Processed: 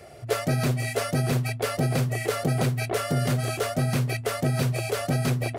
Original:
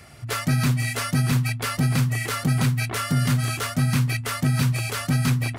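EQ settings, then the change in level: band shelf 510 Hz +13 dB 1.3 oct; -4.0 dB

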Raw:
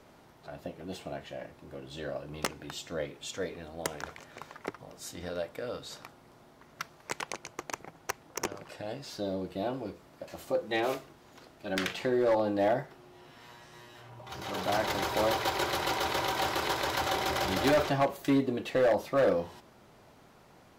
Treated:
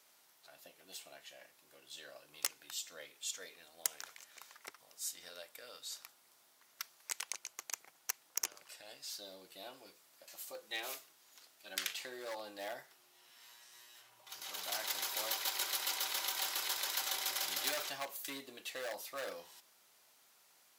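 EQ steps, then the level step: differentiator; +3.0 dB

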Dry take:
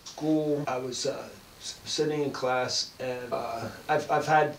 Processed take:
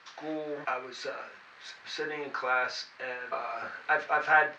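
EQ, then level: band-pass 1700 Hz, Q 1.9; air absorption 94 m; +8.0 dB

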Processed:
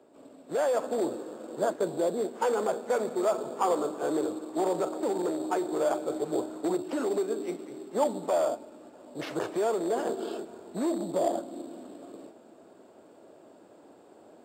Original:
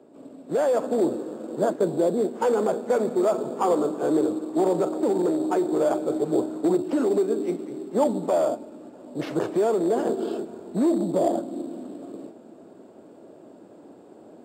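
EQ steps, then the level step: bell 190 Hz -10 dB 2.9 oct; 0.0 dB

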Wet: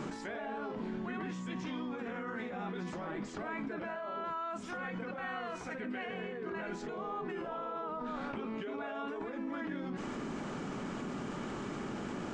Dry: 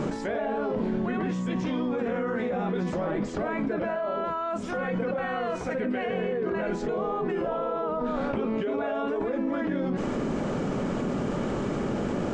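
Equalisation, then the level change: low shelf 210 Hz -10 dB; bell 540 Hz -9 dB 0.77 oct; -5.5 dB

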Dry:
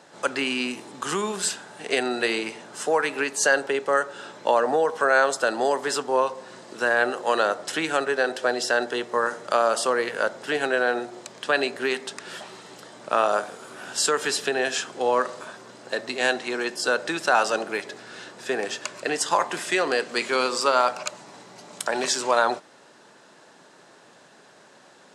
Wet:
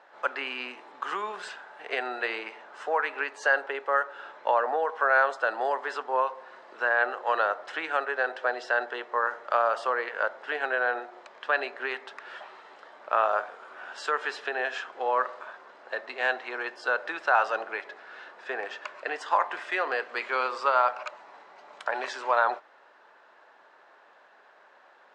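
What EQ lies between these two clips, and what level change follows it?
HPF 730 Hz 12 dB/oct; LPF 1900 Hz 12 dB/oct; 0.0 dB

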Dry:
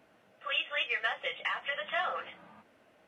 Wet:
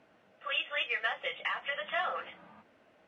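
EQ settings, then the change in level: air absorption 58 m; notches 60/120 Hz; 0.0 dB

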